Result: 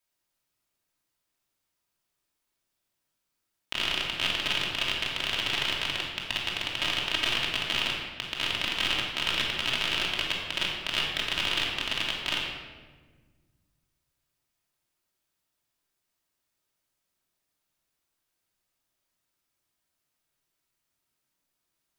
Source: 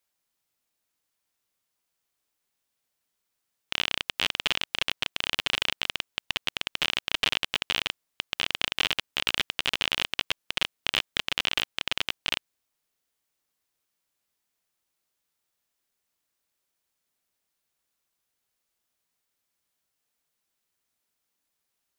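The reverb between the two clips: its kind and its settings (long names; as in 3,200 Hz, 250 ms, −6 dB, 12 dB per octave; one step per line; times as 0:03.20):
rectangular room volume 1,300 cubic metres, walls mixed, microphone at 2.8 metres
level −4.5 dB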